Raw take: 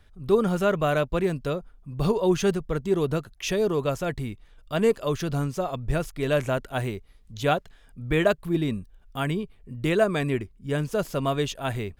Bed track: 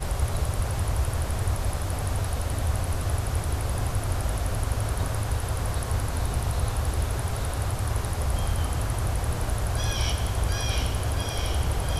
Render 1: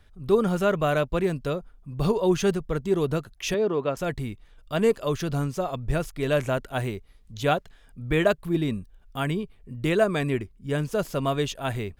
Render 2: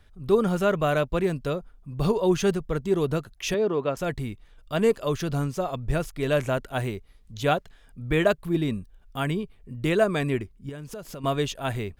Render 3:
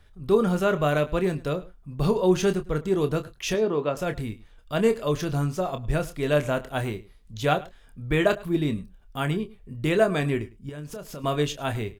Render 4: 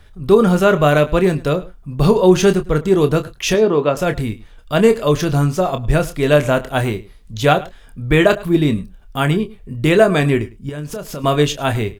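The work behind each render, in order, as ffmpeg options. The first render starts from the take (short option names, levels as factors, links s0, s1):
-filter_complex "[0:a]asettb=1/sr,asplit=3[s0][s1][s2];[s0]atrim=end=3.544[s3];[s1]atrim=start=3.54:end=3.97,asetpts=PTS-STARTPTS,afade=t=in:d=0.004:c=qsin,afade=t=out:st=0.426:d=0.004:c=qsin,highpass=180,lowpass=3000[s4];[s2]atrim=start=3.966[s5];[s3][s4]acrossfade=d=0.004:c1=hsin:c2=qsin[s6];[s6][s5]acrossfade=d=0.004:c1=qsin:c2=hsin"
-filter_complex "[0:a]asettb=1/sr,asplit=3[s0][s1][s2];[s0]atrim=end=10.694[s3];[s1]atrim=start=10.69:end=11.24,asetpts=PTS-STARTPTS,afade=t=in:d=0.004:c=qsin,afade=t=out:st=0.546:d=0.004:c=qsin,acompressor=threshold=0.02:ratio=8:attack=3.2:release=140:knee=1:detection=peak[s4];[s2]atrim=start=11.236[s5];[s3][s4]acrossfade=d=0.004:c1=hsin:c2=qsin[s6];[s6][s5]acrossfade=d=0.004:c1=qsin:c2=hsin"
-filter_complex "[0:a]asplit=2[s0][s1];[s1]adelay=27,volume=0.335[s2];[s0][s2]amix=inputs=2:normalize=0,asplit=2[s3][s4];[s4]adelay=105,volume=0.1,highshelf=f=4000:g=-2.36[s5];[s3][s5]amix=inputs=2:normalize=0"
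-af "volume=3.16,alimiter=limit=0.891:level=0:latency=1"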